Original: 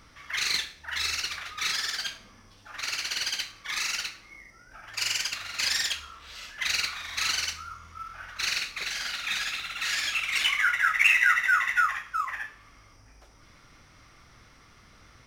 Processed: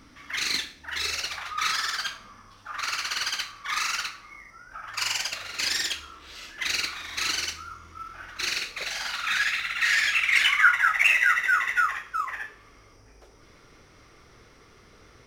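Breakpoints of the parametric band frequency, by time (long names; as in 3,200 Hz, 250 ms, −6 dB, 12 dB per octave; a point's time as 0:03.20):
parametric band +11.5 dB 0.68 octaves
0:00.84 270 Hz
0:01.56 1,200 Hz
0:04.99 1,200 Hz
0:05.64 340 Hz
0:08.54 340 Hz
0:09.47 1,900 Hz
0:10.38 1,900 Hz
0:11.35 420 Hz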